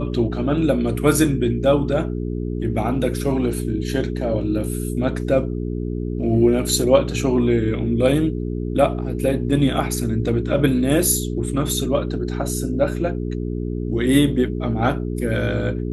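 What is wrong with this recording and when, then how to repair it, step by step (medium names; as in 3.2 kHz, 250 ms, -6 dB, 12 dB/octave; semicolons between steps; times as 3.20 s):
hum 60 Hz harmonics 7 -25 dBFS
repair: de-hum 60 Hz, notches 7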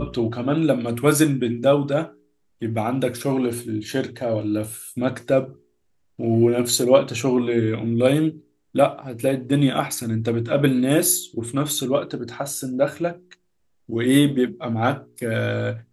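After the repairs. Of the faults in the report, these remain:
nothing left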